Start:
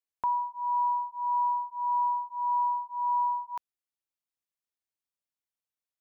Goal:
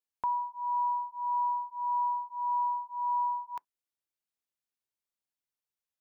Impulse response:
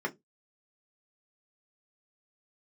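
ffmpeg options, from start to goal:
-filter_complex "[0:a]asplit=2[a][b];[1:a]atrim=start_sample=2205,atrim=end_sample=3087[c];[b][c]afir=irnorm=-1:irlink=0,volume=-27dB[d];[a][d]amix=inputs=2:normalize=0,volume=-1.5dB"

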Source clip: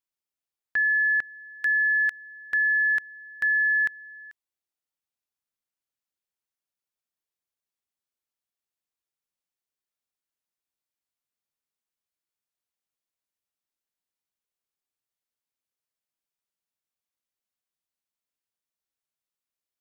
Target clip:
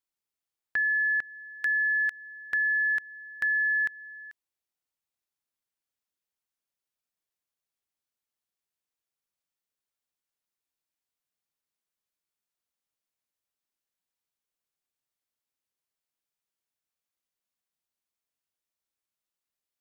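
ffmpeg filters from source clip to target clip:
-af "acompressor=threshold=-30dB:ratio=1.5"

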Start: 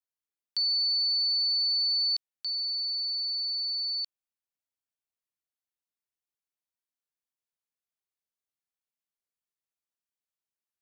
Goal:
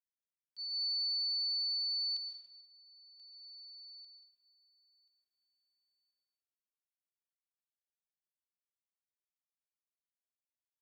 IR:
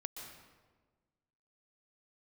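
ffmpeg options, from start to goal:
-filter_complex "[0:a]agate=range=-18dB:threshold=-27dB:ratio=16:detection=peak,aecho=1:1:1032|2064:0.126|0.0315[a];[1:a]atrim=start_sample=2205[b];[a][b]afir=irnorm=-1:irlink=0,volume=-6.5dB"

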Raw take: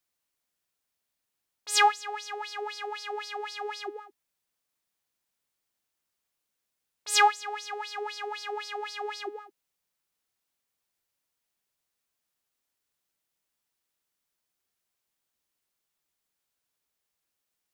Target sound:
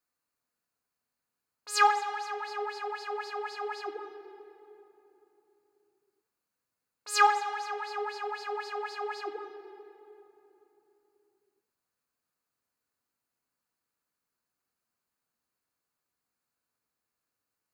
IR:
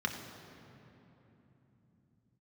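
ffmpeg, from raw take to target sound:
-filter_complex "[0:a]asplit=2[a][b];[b]highshelf=f=4.7k:g=6.5[c];[1:a]atrim=start_sample=2205,highshelf=f=3.2k:g=-11[d];[c][d]afir=irnorm=-1:irlink=0,volume=-4.5dB[e];[a][e]amix=inputs=2:normalize=0,volume=-3.5dB"

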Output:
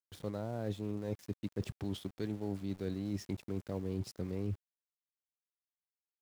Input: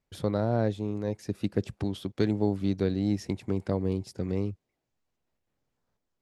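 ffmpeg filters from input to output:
-af "areverse,acompressor=threshold=-40dB:ratio=10,areverse,aeval=exprs='val(0)*gte(abs(val(0)),0.00126)':c=same,volume=6dB"

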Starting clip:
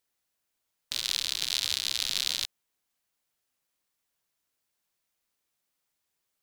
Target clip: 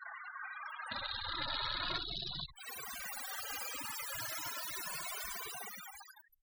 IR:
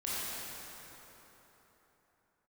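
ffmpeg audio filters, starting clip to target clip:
-filter_complex "[0:a]aeval=exprs='val(0)+0.5*0.0562*sgn(val(0))':c=same,acompressor=threshold=-31dB:ratio=3,asetnsamples=n=441:p=0,asendcmd='1.98 equalizer g 3',equalizer=f=1.3k:w=0.77:g=12,aecho=1:1:62|124|186|248|310|372|434:0.398|0.223|0.125|0.0699|0.0392|0.0219|0.0123,dynaudnorm=f=280:g=9:m=7dB,afftfilt=real='re*gte(hypot(re,im),0.0708)':imag='im*gte(hypot(re,im),0.0708)':win_size=1024:overlap=0.75,asplit=2[a][b];[b]adelay=2.2,afreqshift=0.36[c];[a][c]amix=inputs=2:normalize=1,volume=-7dB"

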